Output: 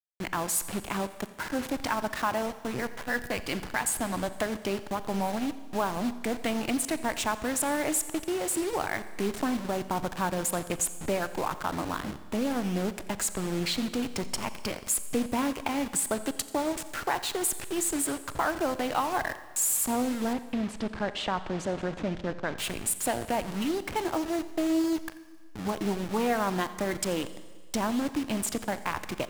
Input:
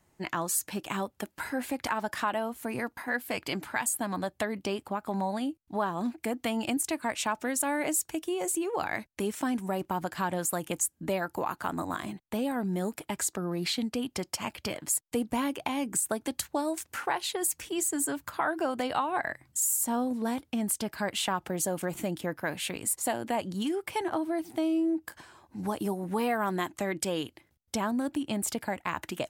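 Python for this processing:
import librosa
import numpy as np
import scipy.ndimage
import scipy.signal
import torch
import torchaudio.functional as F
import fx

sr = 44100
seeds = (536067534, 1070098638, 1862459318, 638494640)

y = fx.delta_hold(x, sr, step_db=-33.5)
y = fx.air_absorb(y, sr, metres=150.0, at=(20.33, 22.56))
y = y + 10.0 ** (-20.5 / 20.0) * np.pad(y, (int(87 * sr / 1000.0), 0))[:len(y)]
y = fx.rev_schroeder(y, sr, rt60_s=1.6, comb_ms=29, drr_db=14.0)
y = fx.doppler_dist(y, sr, depth_ms=0.11)
y = F.gain(torch.from_numpy(y), 1.5).numpy()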